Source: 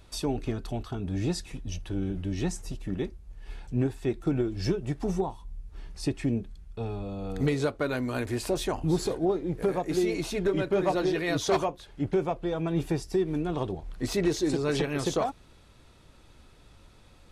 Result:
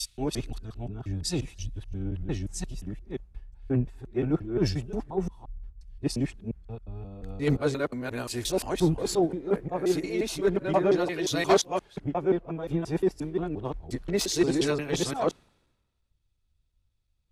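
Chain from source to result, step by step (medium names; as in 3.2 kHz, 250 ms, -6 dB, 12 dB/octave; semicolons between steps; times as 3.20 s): time reversed locally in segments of 176 ms; three bands expanded up and down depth 100%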